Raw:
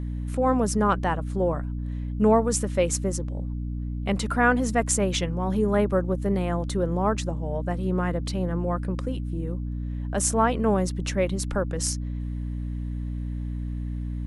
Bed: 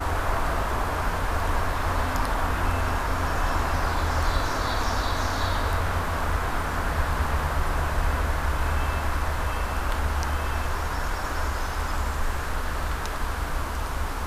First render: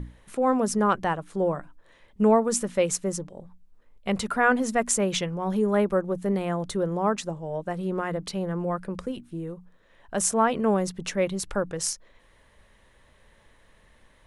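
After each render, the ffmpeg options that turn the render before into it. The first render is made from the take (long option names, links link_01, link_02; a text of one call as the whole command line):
ffmpeg -i in.wav -af "bandreject=frequency=60:width_type=h:width=6,bandreject=frequency=120:width_type=h:width=6,bandreject=frequency=180:width_type=h:width=6,bandreject=frequency=240:width_type=h:width=6,bandreject=frequency=300:width_type=h:width=6" out.wav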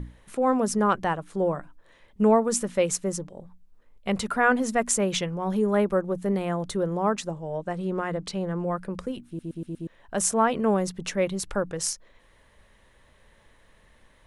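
ffmpeg -i in.wav -filter_complex "[0:a]asettb=1/sr,asplit=3[link_01][link_02][link_03];[link_01]atrim=end=7.424[link_04];[link_02]atrim=start=7.42:end=8.65,asetpts=PTS-STARTPTS,afade=type=in:duration=0.004:curve=qsin,afade=type=out:start_time=1.226:duration=0.004:curve=qsin,lowpass=frequency=9700:width=0.5412,lowpass=frequency=9700:width=1.3066[link_05];[link_03]atrim=start=8.646[link_06];[link_04][link_05]acrossfade=duration=0.004:curve1=hsin:curve2=qsin[link_07];[link_07][link_06]acrossfade=duration=0.004:curve1=qsin:curve2=hsin,asplit=6[link_08][link_09][link_10][link_11][link_12][link_13];[link_08]atrim=end=9.392[link_14];[link_09]atrim=start=9.268:end=9.392[link_15];[link_10]atrim=start=9.268:end=9.392[link_16];[link_11]atrim=start=9.268:end=9.392[link_17];[link_12]atrim=start=9.268:end=9.392[link_18];[link_13]atrim=start=9.868[link_19];[link_14][link_15]acrossfade=duration=0.004:curve1=hsin:curve2=hsin[link_20];[link_20][link_16]acrossfade=duration=0.004:curve1=hsin:curve2=hsin[link_21];[link_21][link_17]acrossfade=duration=0.004:curve1=hsin:curve2=hsin[link_22];[link_22][link_18]acrossfade=duration=0.004:curve1=hsin:curve2=hsin[link_23];[link_23][link_19]acrossfade=duration=0.004:curve1=hsin:curve2=hsin" out.wav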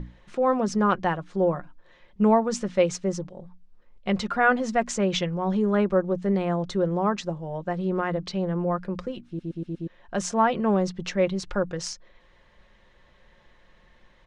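ffmpeg -i in.wav -af "lowpass=frequency=5900:width=0.5412,lowpass=frequency=5900:width=1.3066,aecho=1:1:5.6:0.36" out.wav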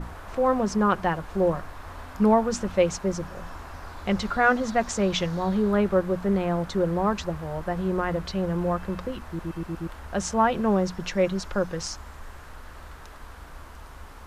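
ffmpeg -i in.wav -i bed.wav -filter_complex "[1:a]volume=-15dB[link_01];[0:a][link_01]amix=inputs=2:normalize=0" out.wav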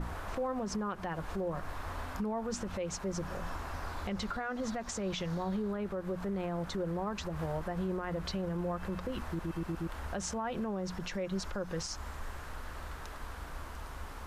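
ffmpeg -i in.wav -af "acompressor=threshold=-26dB:ratio=6,alimiter=level_in=3.5dB:limit=-24dB:level=0:latency=1:release=113,volume=-3.5dB" out.wav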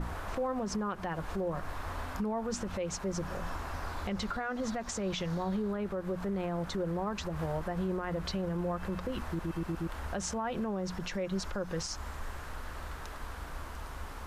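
ffmpeg -i in.wav -af "volume=1.5dB" out.wav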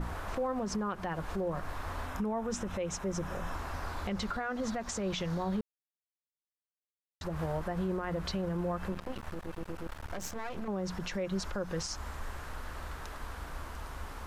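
ffmpeg -i in.wav -filter_complex "[0:a]asettb=1/sr,asplit=3[link_01][link_02][link_03];[link_01]atrim=end=2.074[link_04];[link_02]atrim=start=2.07:end=3.54,asetpts=PTS-STARTPTS,afade=type=in:duration=0.004:curve=qsin,afade=type=out:start_time=1.466:duration=0.004:curve=qsin,bandreject=frequency=4500:width=5.9[link_05];[link_03]atrim=start=3.536[link_06];[link_04][link_05]acrossfade=duration=0.004:curve1=hsin:curve2=qsin[link_07];[link_07][link_06]acrossfade=duration=0.004:curve1=qsin:curve2=hsin,asettb=1/sr,asplit=3[link_08][link_09][link_10];[link_08]atrim=end=8.924[link_11];[link_09]atrim=start=8.92:end=10.68,asetpts=PTS-STARTPTS,afade=type=in:duration=0.004:curve=qsin,afade=type=out:start_time=1.756:duration=0.004:curve=qsin,aeval=exprs='max(val(0),0)':channel_layout=same[link_12];[link_10]atrim=start=10.676[link_13];[link_11][link_12]acrossfade=duration=0.004:curve1=hsin:curve2=qsin[link_14];[link_14][link_13]acrossfade=duration=0.004:curve1=qsin:curve2=hsin,asplit=3[link_15][link_16][link_17];[link_15]atrim=end=5.61,asetpts=PTS-STARTPTS,afade=type=out:start_time=5.606:duration=0.004:curve=hsin[link_18];[link_16]atrim=start=5.61:end=7.21,asetpts=PTS-STARTPTS,volume=0[link_19];[link_17]atrim=start=7.21,asetpts=PTS-STARTPTS,afade=type=in:duration=0.004:curve=hsin[link_20];[link_18][link_19][link_20]concat=n=3:v=0:a=1" out.wav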